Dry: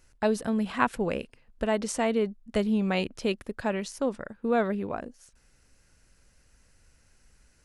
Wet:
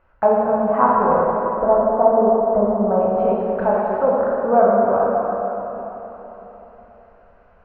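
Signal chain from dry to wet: low-pass that closes with the level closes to 1 kHz, closed at -26 dBFS; low-pass 2.6 kHz 24 dB/octave, from 1.12 s 1.3 kHz, from 3.01 s 2.7 kHz; high-order bell 840 Hz +13 dB; plate-style reverb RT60 3.9 s, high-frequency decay 0.7×, DRR -5.5 dB; trim -2 dB

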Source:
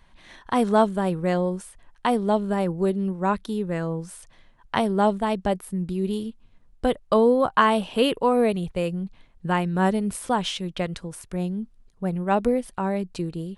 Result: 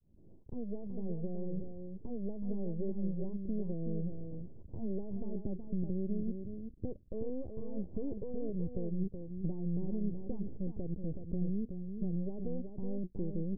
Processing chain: fade-in on the opening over 3.52 s; high-pass 57 Hz 12 dB/octave; reverse; upward compressor, threshold -28 dBFS; reverse; peak limiter -15 dBFS, peak gain reduction 11 dB; half-wave rectifier; compression 6:1, threshold -43 dBFS, peak gain reduction 20.5 dB; hard clipper -37.5 dBFS, distortion -17 dB; inverse Chebyshev low-pass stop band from 1.5 kHz, stop band 60 dB; peaking EQ 81 Hz +4 dB 2.9 oct; on a send: delay 374 ms -7 dB; on the sum: trim +10.5 dB

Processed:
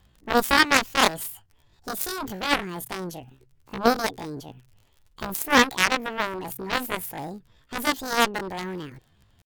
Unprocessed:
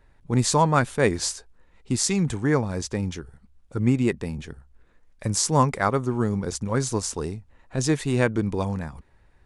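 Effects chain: crackle 18 per s -37 dBFS; pitch shift +11 st; Chebyshev shaper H 7 -13 dB, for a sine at -5 dBFS; trim +3 dB

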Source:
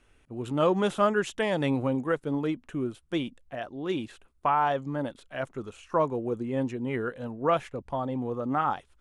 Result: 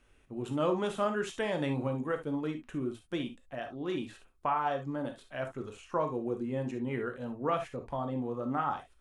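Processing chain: in parallel at -2 dB: compression, threshold -32 dBFS, peak gain reduction 13.5 dB; on the sum: gated-style reverb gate 90 ms flat, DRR 5 dB; trim -8.5 dB

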